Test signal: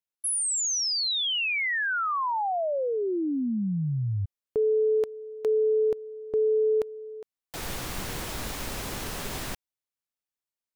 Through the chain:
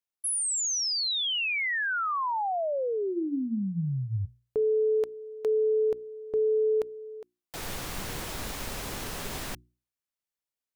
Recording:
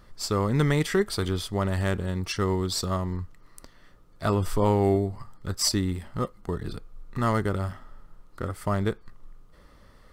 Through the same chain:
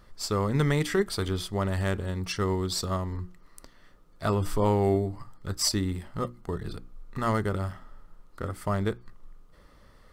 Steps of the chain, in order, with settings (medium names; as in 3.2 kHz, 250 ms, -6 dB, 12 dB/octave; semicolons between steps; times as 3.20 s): hum notches 60/120/180/240/300/360 Hz; trim -1.5 dB